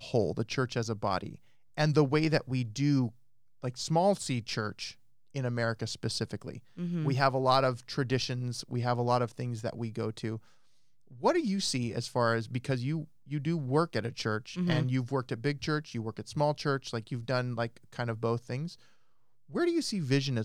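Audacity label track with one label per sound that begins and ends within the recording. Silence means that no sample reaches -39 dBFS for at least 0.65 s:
11.230000	18.730000	sound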